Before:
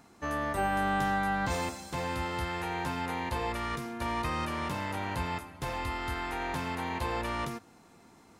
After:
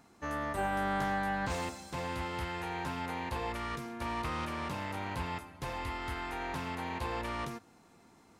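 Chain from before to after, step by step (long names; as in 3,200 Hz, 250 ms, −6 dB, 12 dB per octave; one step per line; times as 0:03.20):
highs frequency-modulated by the lows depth 0.2 ms
level −3.5 dB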